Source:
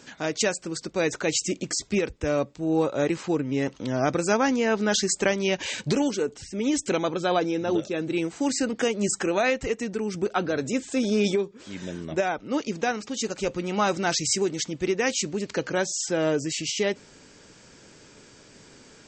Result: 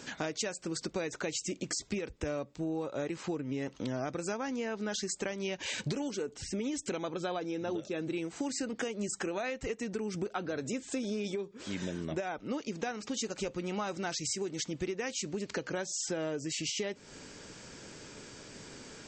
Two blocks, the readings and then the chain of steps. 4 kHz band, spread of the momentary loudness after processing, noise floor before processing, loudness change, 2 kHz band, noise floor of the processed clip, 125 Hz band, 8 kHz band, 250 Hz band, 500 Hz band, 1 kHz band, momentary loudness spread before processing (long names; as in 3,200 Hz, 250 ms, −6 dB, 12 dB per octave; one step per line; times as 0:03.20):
−8.5 dB, 5 LU, −52 dBFS, −10.0 dB, −10.5 dB, −56 dBFS, −8.0 dB, −8.5 dB, −9.5 dB, −10.5 dB, −11.5 dB, 6 LU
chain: downward compressor 12 to 1, threshold −34 dBFS, peak gain reduction 17.5 dB
level +2 dB